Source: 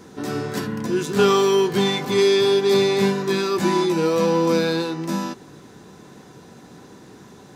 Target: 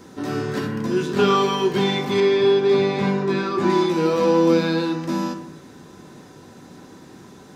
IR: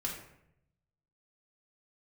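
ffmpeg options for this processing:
-filter_complex "[0:a]asettb=1/sr,asplit=3[s0][s1][s2];[s0]atrim=end=2.204[s3];[s1]atrim=start=2.2:end=3.7,asetpts=PTS-STARTPTS,afade=t=in:d=0.004:c=qsin,afade=t=out:st=1.496:d=0.004:c=qsin,aemphasis=mode=reproduction:type=75fm[s4];[s2]atrim=start=3.696[s5];[s3][s4]acrossfade=d=0.004:c1=hsin:c2=qsin[s6];[s6][s5]acrossfade=d=0.004:c1=qsin:c2=hsin,acrossover=split=4800[s7][s8];[s8]acompressor=threshold=0.00501:ratio=4:attack=1:release=60[s9];[s7][s9]amix=inputs=2:normalize=0,asplit=2[s10][s11];[1:a]atrim=start_sample=2205[s12];[s11][s12]afir=irnorm=-1:irlink=0,volume=0.794[s13];[s10][s13]amix=inputs=2:normalize=0,volume=0.596"

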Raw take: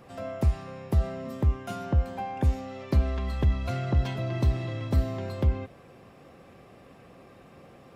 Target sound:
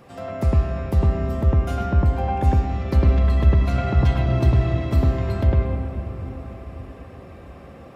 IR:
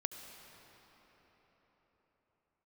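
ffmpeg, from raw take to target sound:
-filter_complex "[0:a]asplit=2[s0][s1];[1:a]atrim=start_sample=2205,lowpass=2400,adelay=104[s2];[s1][s2]afir=irnorm=-1:irlink=0,volume=1.5[s3];[s0][s3]amix=inputs=2:normalize=0,volume=1.41"

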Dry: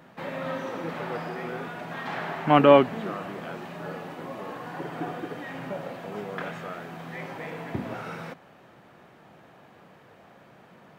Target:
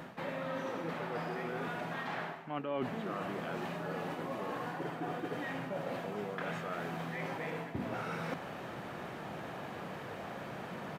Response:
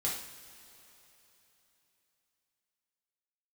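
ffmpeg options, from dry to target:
-af "areverse,acompressor=threshold=0.00501:ratio=8,areverse,aresample=32000,aresample=44100,volume=3.16"

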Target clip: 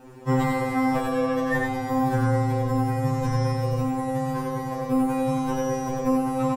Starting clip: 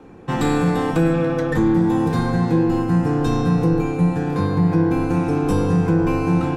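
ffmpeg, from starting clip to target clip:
-filter_complex "[0:a]aemphasis=mode=production:type=50fm,acrossover=split=2800[s0][s1];[s1]acompressor=threshold=0.00631:ratio=4:attack=1:release=60[s2];[s0][s2]amix=inputs=2:normalize=0,asplit=2[s3][s4];[s4]aecho=0:1:93:0.668[s5];[s3][s5]amix=inputs=2:normalize=0,afftfilt=real='re*2.45*eq(mod(b,6),0)':imag='im*2.45*eq(mod(b,6),0)':win_size=2048:overlap=0.75"

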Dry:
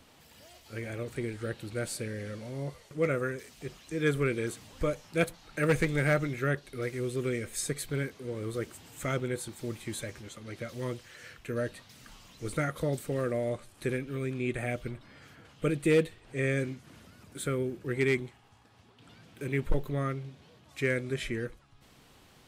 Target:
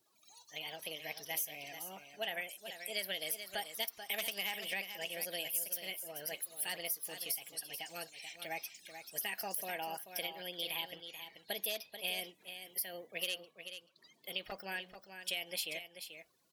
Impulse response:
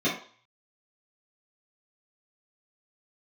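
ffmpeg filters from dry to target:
-af "afftdn=nr=24:nf=-53,aderivative,acompressor=threshold=0.00501:ratio=12,aecho=1:1:593:0.335,asetrate=59976,aresample=44100,volume=4.22"

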